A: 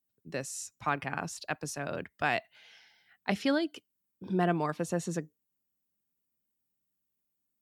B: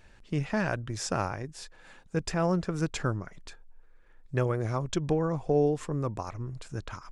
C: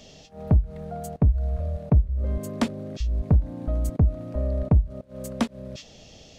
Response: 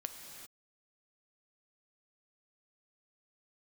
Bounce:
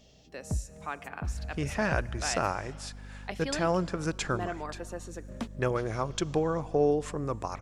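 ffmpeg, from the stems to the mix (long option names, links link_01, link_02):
-filter_complex "[0:a]highpass=300,volume=-8.5dB,asplit=3[link_01][link_02][link_03];[link_02]volume=-7dB[link_04];[1:a]lowshelf=frequency=240:gain=-9.5,aeval=exprs='val(0)+0.00501*(sin(2*PI*50*n/s)+sin(2*PI*2*50*n/s)/2+sin(2*PI*3*50*n/s)/3+sin(2*PI*4*50*n/s)/4+sin(2*PI*5*50*n/s)/5)':channel_layout=same,adelay=1250,volume=1dB,asplit=2[link_05][link_06];[link_06]volume=-13dB[link_07];[2:a]volume=-12.5dB,asplit=3[link_08][link_09][link_10];[link_08]atrim=end=2.48,asetpts=PTS-STARTPTS,afade=type=out:start_time=2.476:duration=0.004:curve=hsin[link_11];[link_09]atrim=start=2.48:end=5.28,asetpts=PTS-STARTPTS,volume=0[link_12];[link_10]atrim=start=5.28,asetpts=PTS-STARTPTS,afade=type=in:duration=0.004:curve=hsin[link_13];[link_11][link_12][link_13]concat=n=3:v=0:a=1,asplit=2[link_14][link_15];[link_15]volume=-19dB[link_16];[link_03]apad=whole_len=281678[link_17];[link_14][link_17]sidechaincompress=threshold=-47dB:ratio=8:attack=38:release=177[link_18];[3:a]atrim=start_sample=2205[link_19];[link_04][link_07][link_16]amix=inputs=3:normalize=0[link_20];[link_20][link_19]afir=irnorm=-1:irlink=0[link_21];[link_01][link_05][link_18][link_21]amix=inputs=4:normalize=0,aeval=exprs='val(0)+0.000794*(sin(2*PI*60*n/s)+sin(2*PI*2*60*n/s)/2+sin(2*PI*3*60*n/s)/3+sin(2*PI*4*60*n/s)/4+sin(2*PI*5*60*n/s)/5)':channel_layout=same"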